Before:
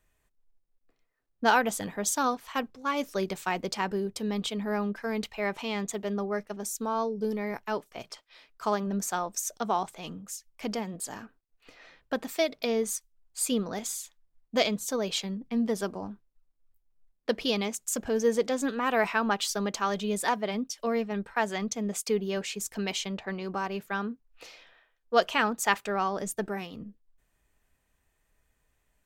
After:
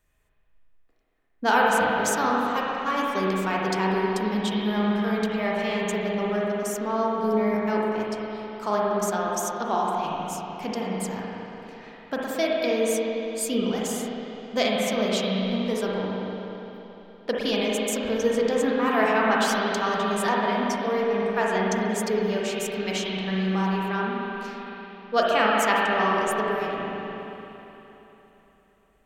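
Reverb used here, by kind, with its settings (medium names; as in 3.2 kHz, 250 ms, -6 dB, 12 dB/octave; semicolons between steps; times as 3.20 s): spring tank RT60 3.5 s, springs 37/58 ms, chirp 70 ms, DRR -4.5 dB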